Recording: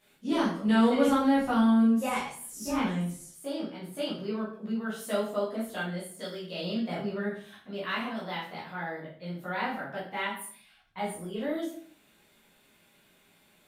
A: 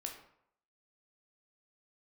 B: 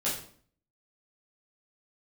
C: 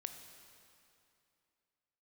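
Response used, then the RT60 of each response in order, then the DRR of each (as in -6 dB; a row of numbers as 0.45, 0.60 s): B; 0.70, 0.50, 2.6 s; 1.5, -8.5, 6.5 dB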